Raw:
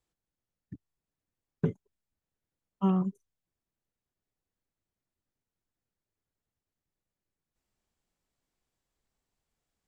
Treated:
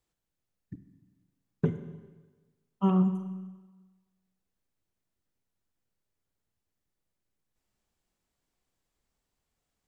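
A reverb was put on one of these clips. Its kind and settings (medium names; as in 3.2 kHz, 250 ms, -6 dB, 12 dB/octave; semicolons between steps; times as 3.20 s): Schroeder reverb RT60 1.3 s, combs from 33 ms, DRR 9 dB; trim +1.5 dB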